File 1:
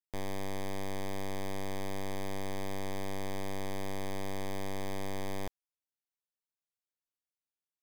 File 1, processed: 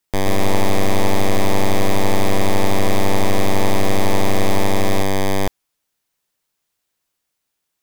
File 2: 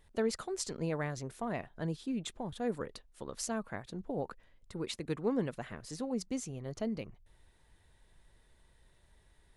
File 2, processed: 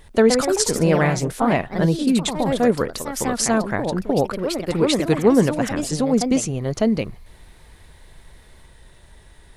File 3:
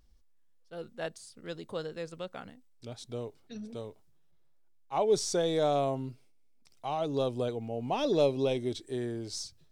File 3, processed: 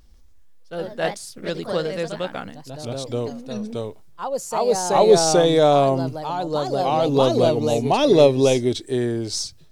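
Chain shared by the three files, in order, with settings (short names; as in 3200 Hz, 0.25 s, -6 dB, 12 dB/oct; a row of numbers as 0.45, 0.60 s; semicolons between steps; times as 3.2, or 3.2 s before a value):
echoes that change speed 0.142 s, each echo +2 st, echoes 2, each echo -6 dB; match loudness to -20 LUFS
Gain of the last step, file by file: +18.5, +17.0, +12.0 dB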